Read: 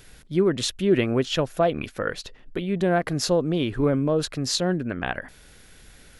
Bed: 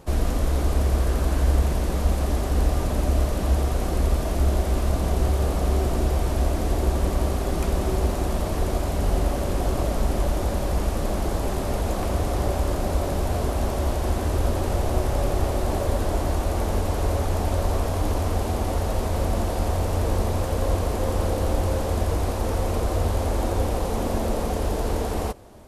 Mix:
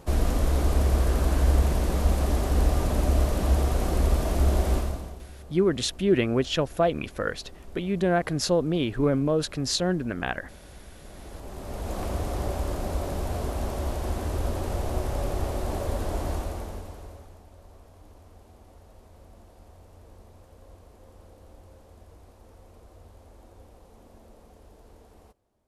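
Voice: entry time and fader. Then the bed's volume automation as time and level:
5.20 s, -1.5 dB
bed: 4.75 s -1 dB
5.27 s -23.5 dB
10.97 s -23.5 dB
11.99 s -5.5 dB
16.35 s -5.5 dB
17.45 s -27.5 dB

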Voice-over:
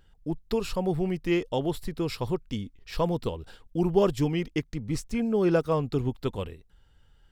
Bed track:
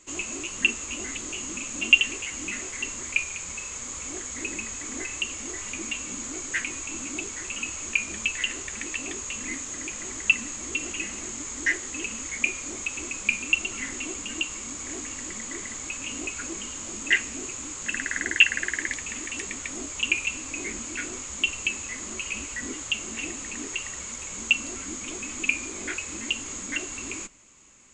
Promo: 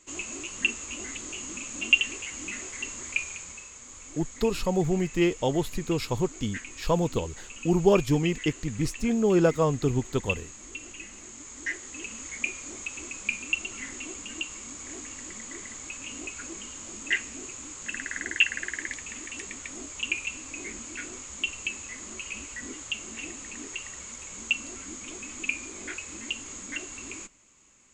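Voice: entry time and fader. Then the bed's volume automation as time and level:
3.90 s, +2.0 dB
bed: 3.31 s -3.5 dB
3.74 s -10.5 dB
11.13 s -10.5 dB
12.26 s -5 dB

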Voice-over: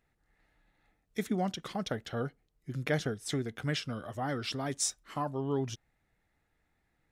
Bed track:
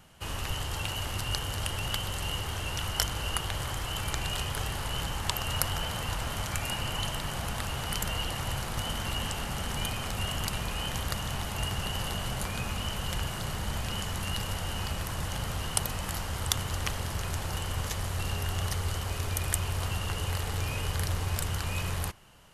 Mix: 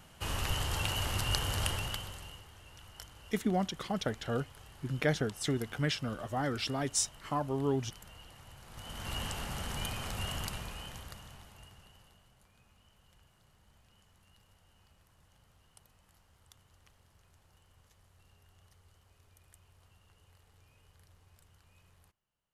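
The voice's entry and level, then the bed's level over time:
2.15 s, +1.0 dB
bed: 1.69 s 0 dB
2.5 s -21 dB
8.58 s -21 dB
9.14 s -5 dB
10.37 s -5 dB
12.31 s -32.5 dB

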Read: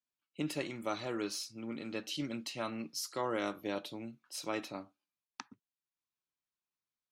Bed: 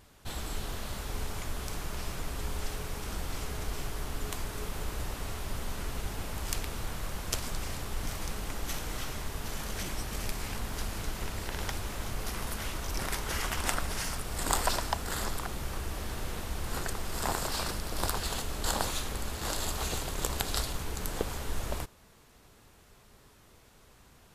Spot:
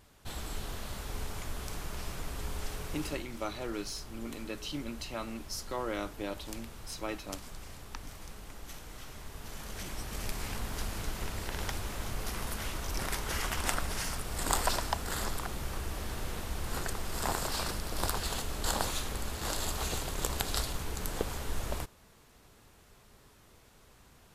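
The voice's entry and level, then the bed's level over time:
2.55 s, -0.5 dB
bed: 3.05 s -2.5 dB
3.26 s -10.5 dB
8.95 s -10.5 dB
10.41 s -1 dB

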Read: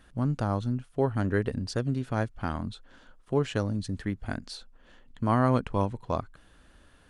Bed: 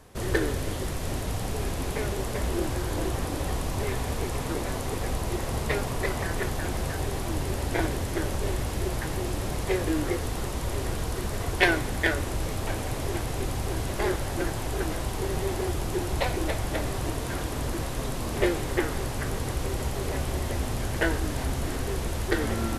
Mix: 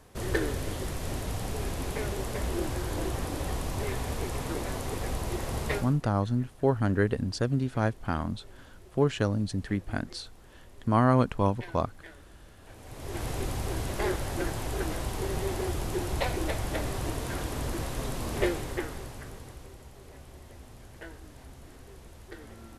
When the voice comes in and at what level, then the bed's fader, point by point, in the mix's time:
5.65 s, +1.5 dB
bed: 5.76 s -3 dB
6.04 s -24.5 dB
12.59 s -24.5 dB
13.25 s -2.5 dB
18.42 s -2.5 dB
19.83 s -19.5 dB

